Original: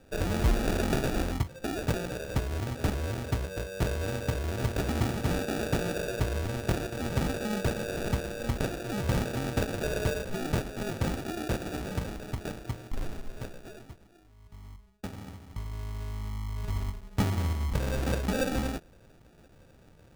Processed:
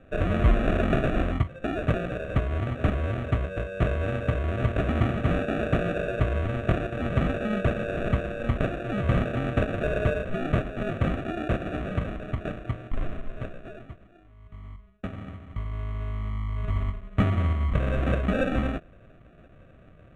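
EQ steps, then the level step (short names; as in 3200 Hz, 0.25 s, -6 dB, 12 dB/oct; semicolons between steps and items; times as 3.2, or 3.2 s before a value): LPF 3400 Hz 12 dB/oct; band shelf 850 Hz +12 dB 1.2 oct; fixed phaser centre 2100 Hz, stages 4; +5.0 dB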